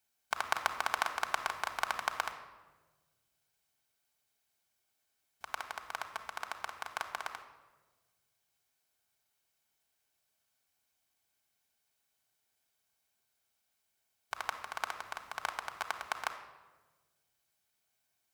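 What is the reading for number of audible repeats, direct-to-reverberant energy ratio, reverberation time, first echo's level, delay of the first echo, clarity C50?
no echo, 3.5 dB, 1.3 s, no echo, no echo, 9.5 dB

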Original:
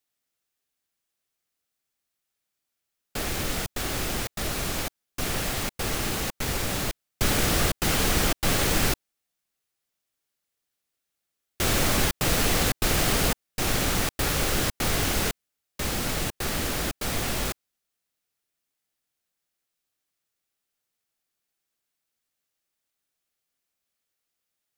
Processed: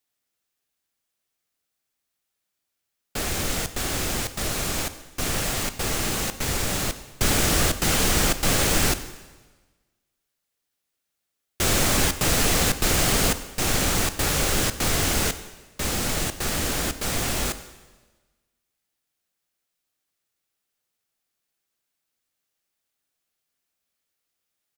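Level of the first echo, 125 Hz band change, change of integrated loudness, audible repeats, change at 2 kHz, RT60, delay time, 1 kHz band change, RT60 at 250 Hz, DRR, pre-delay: -22.5 dB, +2.0 dB, +3.0 dB, 1, +2.0 dB, 1.3 s, 94 ms, +2.0 dB, 1.3 s, 11.0 dB, 7 ms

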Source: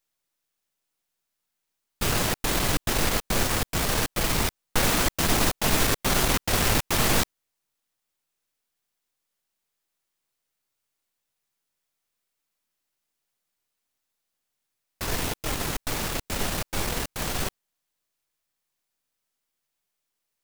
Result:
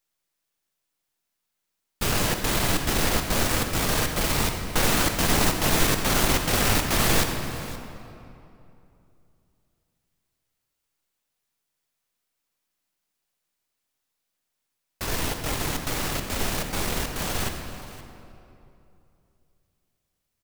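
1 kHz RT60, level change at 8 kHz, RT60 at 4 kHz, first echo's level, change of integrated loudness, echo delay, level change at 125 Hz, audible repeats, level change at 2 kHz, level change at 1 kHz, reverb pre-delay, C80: 2.7 s, +1.0 dB, 1.8 s, -17.5 dB, +1.0 dB, 521 ms, +2.0 dB, 1, +1.5 dB, +1.5 dB, 39 ms, 6.0 dB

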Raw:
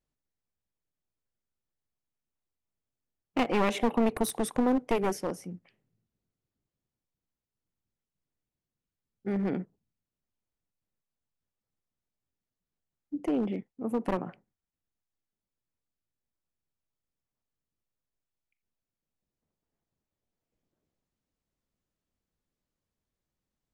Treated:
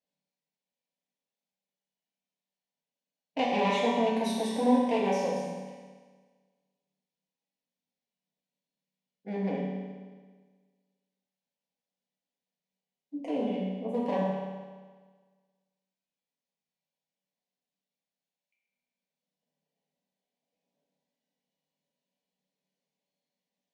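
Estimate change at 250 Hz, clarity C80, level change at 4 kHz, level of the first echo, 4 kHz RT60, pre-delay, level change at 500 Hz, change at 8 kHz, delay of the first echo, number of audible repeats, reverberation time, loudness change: 0.0 dB, 1.5 dB, +3.5 dB, no echo, 1.5 s, 5 ms, +2.0 dB, -5.0 dB, no echo, no echo, 1.5 s, +0.5 dB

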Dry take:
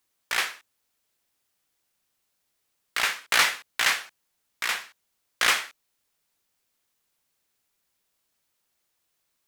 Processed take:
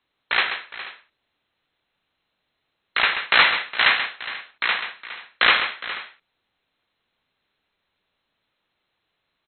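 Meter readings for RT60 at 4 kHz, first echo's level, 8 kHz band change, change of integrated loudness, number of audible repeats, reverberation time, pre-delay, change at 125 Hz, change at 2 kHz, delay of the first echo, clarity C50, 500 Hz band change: no reverb, -9.0 dB, under -40 dB, +5.0 dB, 3, no reverb, no reverb, no reading, +6.5 dB, 134 ms, no reverb, +6.5 dB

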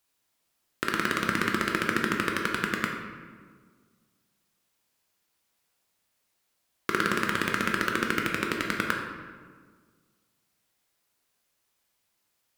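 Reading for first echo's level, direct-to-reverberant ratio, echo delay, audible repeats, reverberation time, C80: no echo, 0.5 dB, no echo, no echo, 1.7 s, 5.0 dB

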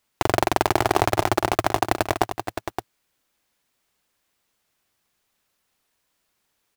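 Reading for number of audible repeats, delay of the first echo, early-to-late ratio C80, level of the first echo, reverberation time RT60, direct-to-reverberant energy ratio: 2, 466 ms, no reverb, -16.5 dB, no reverb, no reverb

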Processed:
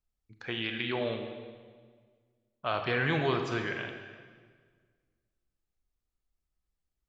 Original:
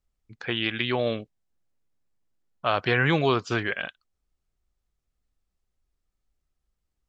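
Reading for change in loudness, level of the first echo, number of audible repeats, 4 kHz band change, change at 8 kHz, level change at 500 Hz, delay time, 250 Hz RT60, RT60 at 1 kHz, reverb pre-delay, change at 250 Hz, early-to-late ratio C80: -6.5 dB, no echo, no echo, -6.5 dB, no reading, -5.5 dB, no echo, 1.8 s, 1.6 s, 26 ms, -6.0 dB, 7.0 dB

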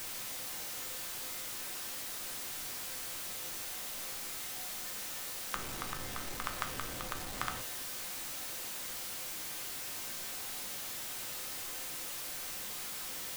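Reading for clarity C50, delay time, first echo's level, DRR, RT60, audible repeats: 11.0 dB, no echo, no echo, 4.0 dB, 0.50 s, no echo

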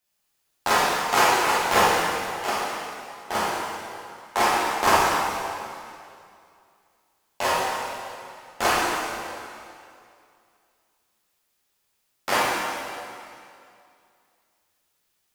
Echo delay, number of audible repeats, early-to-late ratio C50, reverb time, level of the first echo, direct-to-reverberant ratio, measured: no echo, no echo, -3.5 dB, 2.5 s, no echo, -9.0 dB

